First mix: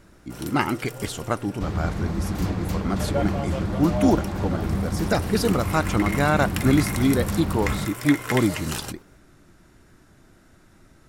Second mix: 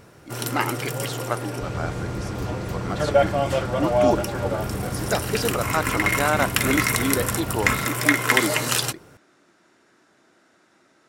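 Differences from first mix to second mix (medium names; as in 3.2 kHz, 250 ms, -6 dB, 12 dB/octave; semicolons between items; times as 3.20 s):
speech: add band-pass 350–7400 Hz; first sound +9.5 dB; second sound -5.5 dB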